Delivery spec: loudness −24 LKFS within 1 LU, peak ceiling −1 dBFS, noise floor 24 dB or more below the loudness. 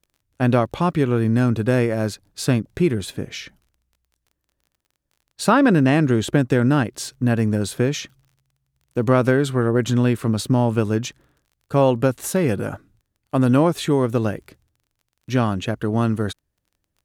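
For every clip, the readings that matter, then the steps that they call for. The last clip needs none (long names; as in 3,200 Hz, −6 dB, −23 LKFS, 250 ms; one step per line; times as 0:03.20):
crackle rate 25 per second; integrated loudness −20.5 LKFS; sample peak −4.0 dBFS; target loudness −24.0 LKFS
→ click removal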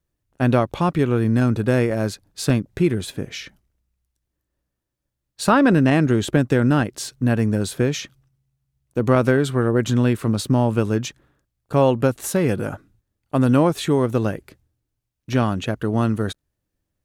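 crackle rate 0.29 per second; integrated loudness −20.5 LKFS; sample peak −4.0 dBFS; target loudness −24.0 LKFS
→ level −3.5 dB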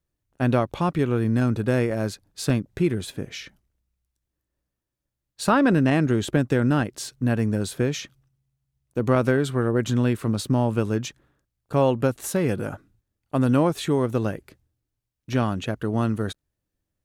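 integrated loudness −24.0 LKFS; sample peak −7.5 dBFS; background noise floor −83 dBFS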